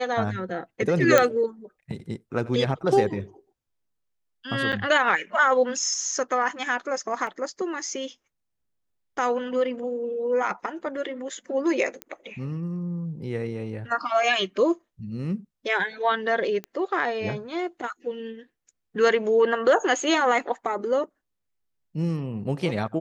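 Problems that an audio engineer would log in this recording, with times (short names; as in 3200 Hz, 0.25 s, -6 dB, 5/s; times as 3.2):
1.18 pop -4 dBFS
4.72–4.73 gap 7.6 ms
7.27 gap 2.4 ms
12.02 pop -17 dBFS
16.64 pop -20 dBFS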